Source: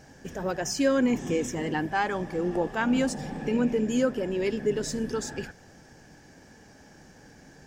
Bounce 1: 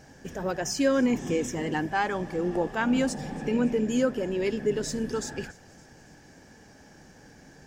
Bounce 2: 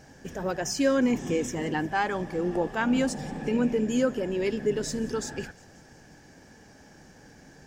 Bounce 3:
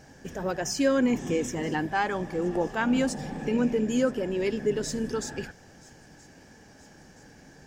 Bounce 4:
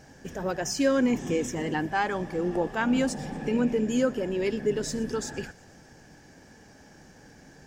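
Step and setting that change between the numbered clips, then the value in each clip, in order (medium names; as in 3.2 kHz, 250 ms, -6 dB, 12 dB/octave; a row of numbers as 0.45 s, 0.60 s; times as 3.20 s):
feedback echo behind a high-pass, time: 281 ms, 178 ms, 975 ms, 119 ms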